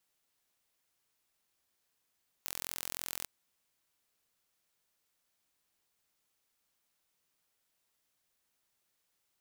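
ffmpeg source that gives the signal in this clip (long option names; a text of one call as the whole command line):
ffmpeg -f lavfi -i "aevalsrc='0.282*eq(mod(n,1021),0)':duration=0.81:sample_rate=44100" out.wav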